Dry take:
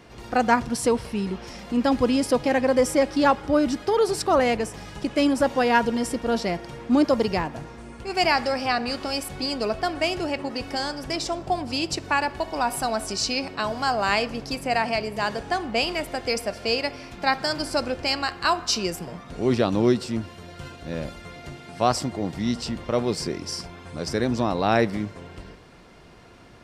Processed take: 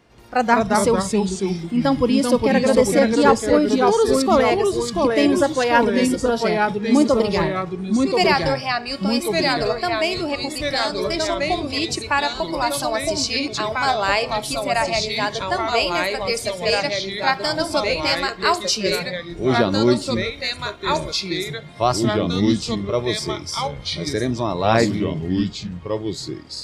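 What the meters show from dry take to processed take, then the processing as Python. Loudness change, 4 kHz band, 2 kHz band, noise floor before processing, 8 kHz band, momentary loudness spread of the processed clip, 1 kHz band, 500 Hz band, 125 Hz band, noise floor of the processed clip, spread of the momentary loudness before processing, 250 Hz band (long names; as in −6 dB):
+4.5 dB, +5.5 dB, +5.0 dB, −44 dBFS, +5.0 dB, 8 LU, +4.0 dB, +5.5 dB, +6.0 dB, −35 dBFS, 12 LU, +5.0 dB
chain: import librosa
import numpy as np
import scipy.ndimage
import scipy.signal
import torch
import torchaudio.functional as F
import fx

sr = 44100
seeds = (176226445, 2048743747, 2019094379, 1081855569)

y = fx.echo_pitch(x, sr, ms=162, semitones=-2, count=2, db_per_echo=-3.0)
y = fx.noise_reduce_blind(y, sr, reduce_db=10)
y = F.gain(torch.from_numpy(y), 3.0).numpy()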